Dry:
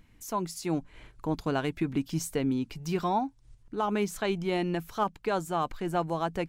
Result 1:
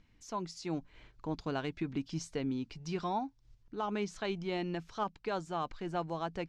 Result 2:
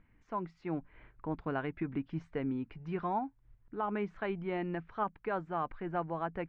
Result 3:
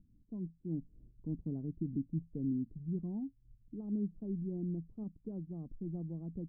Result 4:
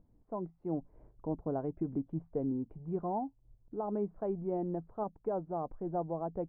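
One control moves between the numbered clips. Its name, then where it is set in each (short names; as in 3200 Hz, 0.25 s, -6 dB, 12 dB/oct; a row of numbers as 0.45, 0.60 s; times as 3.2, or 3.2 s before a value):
ladder low-pass, frequency: 6700, 2400, 300, 840 Hz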